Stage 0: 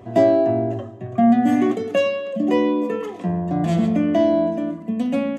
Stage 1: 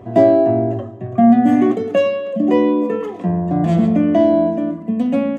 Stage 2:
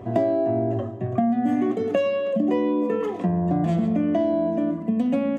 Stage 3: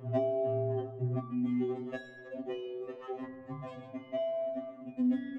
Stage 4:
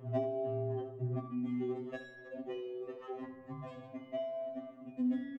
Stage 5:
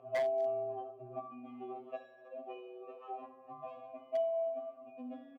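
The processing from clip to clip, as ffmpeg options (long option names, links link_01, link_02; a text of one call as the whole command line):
ffmpeg -i in.wav -af "highshelf=frequency=2200:gain=-9,volume=4.5dB" out.wav
ffmpeg -i in.wav -af "acompressor=threshold=-19dB:ratio=6" out.wav
ffmpeg -i in.wav -af "adynamicsmooth=sensitivity=2.5:basefreq=3400,afftfilt=real='re*2.45*eq(mod(b,6),0)':imag='im*2.45*eq(mod(b,6),0)':win_size=2048:overlap=0.75,volume=-6.5dB" out.wav
ffmpeg -i in.wav -af "aecho=1:1:75:0.237,volume=-3.5dB" out.wav
ffmpeg -i in.wav -filter_complex "[0:a]asplit=3[link_01][link_02][link_03];[link_01]bandpass=frequency=730:width_type=q:width=8,volume=0dB[link_04];[link_02]bandpass=frequency=1090:width_type=q:width=8,volume=-6dB[link_05];[link_03]bandpass=frequency=2440:width_type=q:width=8,volume=-9dB[link_06];[link_04][link_05][link_06]amix=inputs=3:normalize=0,aeval=exprs='0.0141*(abs(mod(val(0)/0.0141+3,4)-2)-1)':channel_layout=same,volume=10dB" out.wav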